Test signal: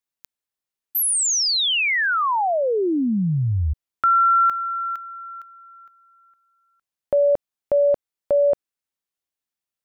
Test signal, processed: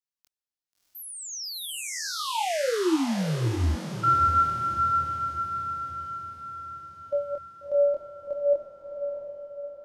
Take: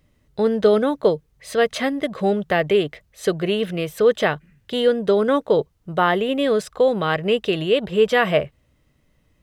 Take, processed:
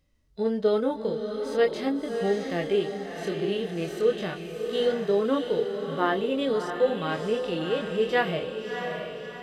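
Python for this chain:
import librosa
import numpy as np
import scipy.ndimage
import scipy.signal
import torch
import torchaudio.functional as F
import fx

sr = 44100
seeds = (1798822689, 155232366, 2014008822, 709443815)

y = fx.chorus_voices(x, sr, voices=6, hz=0.39, base_ms=24, depth_ms=2.1, mix_pct=35)
y = fx.echo_diffused(y, sr, ms=658, feedback_pct=52, wet_db=-7)
y = fx.dynamic_eq(y, sr, hz=330.0, q=6.6, threshold_db=-42.0, ratio=4.0, max_db=6)
y = fx.hpss(y, sr, part='percussive', gain_db=-14)
y = fx.peak_eq(y, sr, hz=5200.0, db=6.0, octaves=1.0)
y = y * 10.0 ** (-3.5 / 20.0)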